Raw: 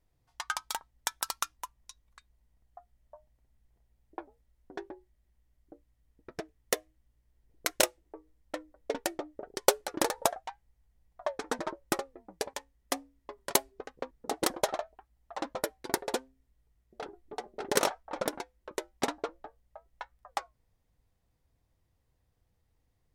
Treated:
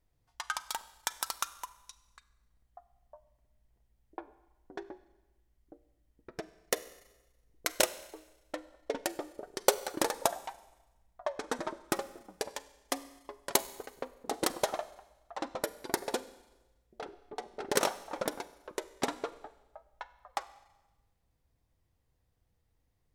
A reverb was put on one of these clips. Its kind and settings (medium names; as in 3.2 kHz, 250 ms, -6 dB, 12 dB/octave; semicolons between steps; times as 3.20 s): Schroeder reverb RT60 1.1 s, combs from 32 ms, DRR 15 dB; trim -1.5 dB